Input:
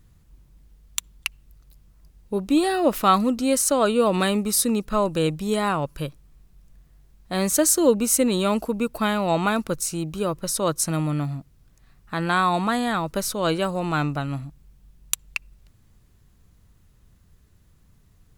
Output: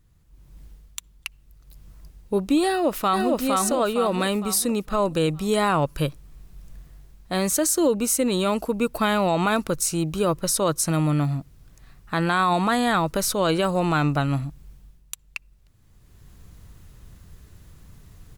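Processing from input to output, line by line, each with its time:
2.67–3.29 echo throw 0.46 s, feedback 35%, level -0.5 dB
whole clip: bell 220 Hz -3.5 dB 0.25 oct; AGC gain up to 16 dB; limiter -6 dBFS; gain -6 dB

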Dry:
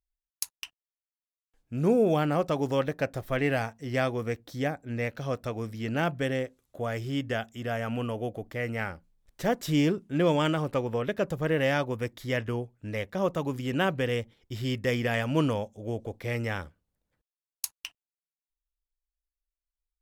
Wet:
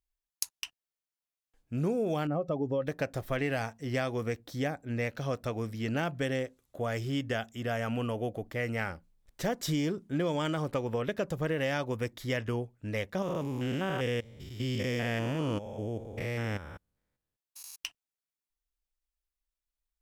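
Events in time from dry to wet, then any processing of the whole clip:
2.27–2.87 spectral contrast raised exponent 1.6
9.63–10.73 notch 2700 Hz, Q 9.7
13.22–17.78 stepped spectrum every 0.2 s
whole clip: dynamic EQ 5800 Hz, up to +4 dB, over -48 dBFS, Q 0.95; compressor, threshold -27 dBFS

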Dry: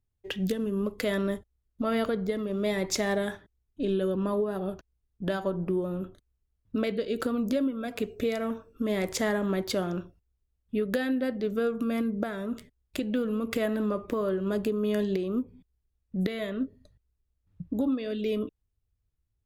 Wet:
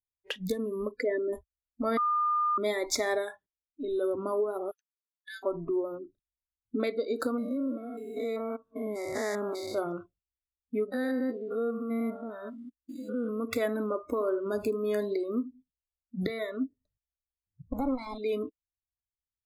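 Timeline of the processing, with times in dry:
0.91–1.33 formant sharpening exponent 2
1.97–2.58 bleep 1210 Hz -24 dBFS
3.17–3.99 dip -9.5 dB, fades 0.37 s quadratic
4.71–5.43 steep high-pass 1600 Hz 72 dB/oct
5.98–6.8 formant sharpening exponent 2
7.38–9.78 stepped spectrum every 0.2 s
10.92–13.4 stepped spectrum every 0.2 s
14.08–16.3 echo 78 ms -12.5 dB
17.72–18.18 minimum comb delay 0.93 ms
whole clip: spectral noise reduction 25 dB; dynamic EQ 200 Hz, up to -7 dB, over -48 dBFS, Q 5.8

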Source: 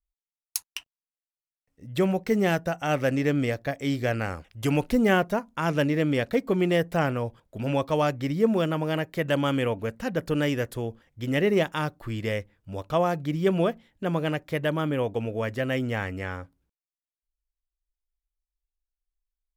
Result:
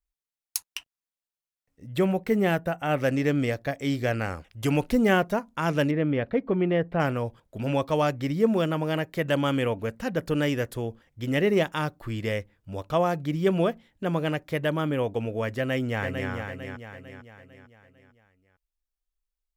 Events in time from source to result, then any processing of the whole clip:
1.95–2.97 bell 5700 Hz -4.5 dB -> -14 dB 0.78 oct
5.91–7 air absorption 420 m
15.57–16.31 echo throw 0.45 s, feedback 45%, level -6.5 dB

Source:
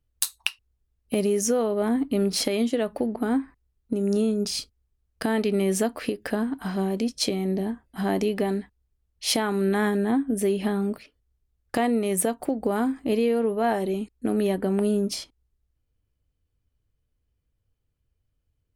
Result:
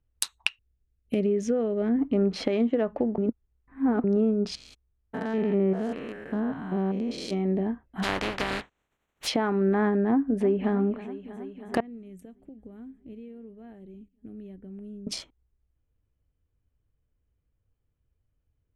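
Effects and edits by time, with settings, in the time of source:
0.48–1.99 bell 970 Hz -14 dB 0.91 oct
3.18–4.04 reverse
4.55–7.33 stepped spectrum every 0.2 s
8.02–9.26 spectral contrast lowered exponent 0.21
10.08–10.72 echo throw 0.32 s, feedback 85%, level -15 dB
11.8–15.07 passive tone stack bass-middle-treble 10-0-1
whole clip: Wiener smoothing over 9 samples; treble ducked by the level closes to 1600 Hz, closed at -19.5 dBFS

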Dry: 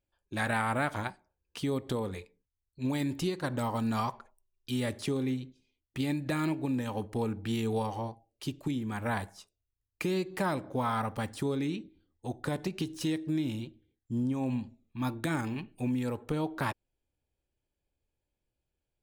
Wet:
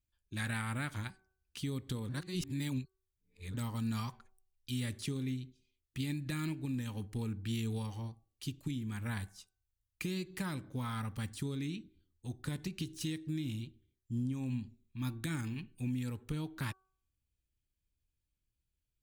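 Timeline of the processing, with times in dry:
2.09–3.54 reverse
whole clip: passive tone stack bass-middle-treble 6-0-2; notch 5200 Hz, Q 26; de-hum 379.1 Hz, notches 4; gain +13 dB

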